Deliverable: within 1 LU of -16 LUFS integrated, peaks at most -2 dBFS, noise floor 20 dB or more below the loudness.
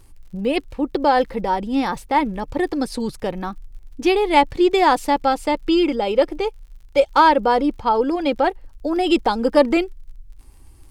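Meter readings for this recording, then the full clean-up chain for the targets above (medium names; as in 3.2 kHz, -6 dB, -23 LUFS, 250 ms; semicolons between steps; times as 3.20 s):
tick rate 49 per s; loudness -19.5 LUFS; peak level -2.5 dBFS; loudness target -16.0 LUFS
-> de-click; trim +3.5 dB; peak limiter -2 dBFS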